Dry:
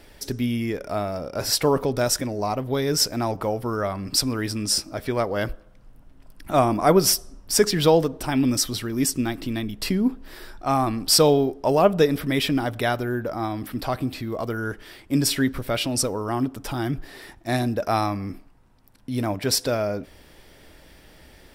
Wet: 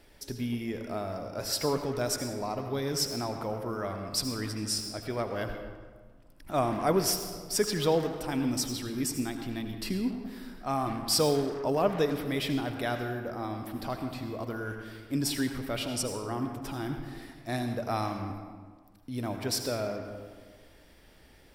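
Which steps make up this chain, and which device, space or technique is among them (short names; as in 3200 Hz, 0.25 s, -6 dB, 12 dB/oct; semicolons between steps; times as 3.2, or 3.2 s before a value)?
saturated reverb return (on a send at -4 dB: reverb RT60 1.4 s, pre-delay 71 ms + soft clip -19.5 dBFS, distortion -10 dB); on the sum: gain -9 dB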